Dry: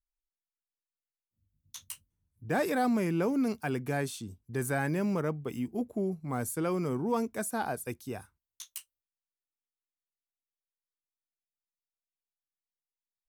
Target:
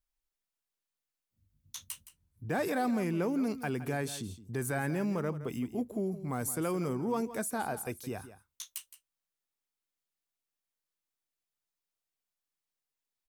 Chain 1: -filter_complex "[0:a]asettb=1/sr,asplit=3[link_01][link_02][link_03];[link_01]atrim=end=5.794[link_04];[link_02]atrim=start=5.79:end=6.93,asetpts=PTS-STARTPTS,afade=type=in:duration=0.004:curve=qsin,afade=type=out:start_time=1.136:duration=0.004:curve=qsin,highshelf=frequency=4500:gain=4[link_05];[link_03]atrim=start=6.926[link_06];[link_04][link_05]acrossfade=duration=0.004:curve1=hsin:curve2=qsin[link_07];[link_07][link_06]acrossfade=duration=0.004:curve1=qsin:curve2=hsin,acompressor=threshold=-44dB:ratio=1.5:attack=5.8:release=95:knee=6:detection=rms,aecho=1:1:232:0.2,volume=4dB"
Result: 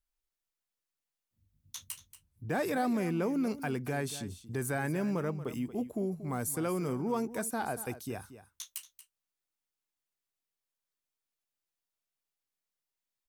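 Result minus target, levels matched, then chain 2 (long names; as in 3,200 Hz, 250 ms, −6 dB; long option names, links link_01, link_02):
echo 65 ms late
-filter_complex "[0:a]asettb=1/sr,asplit=3[link_01][link_02][link_03];[link_01]atrim=end=5.794[link_04];[link_02]atrim=start=5.79:end=6.93,asetpts=PTS-STARTPTS,afade=type=in:duration=0.004:curve=qsin,afade=type=out:start_time=1.136:duration=0.004:curve=qsin,highshelf=frequency=4500:gain=4[link_05];[link_03]atrim=start=6.926[link_06];[link_04][link_05]acrossfade=duration=0.004:curve1=hsin:curve2=qsin[link_07];[link_07][link_06]acrossfade=duration=0.004:curve1=qsin:curve2=hsin,acompressor=threshold=-44dB:ratio=1.5:attack=5.8:release=95:knee=6:detection=rms,aecho=1:1:167:0.2,volume=4dB"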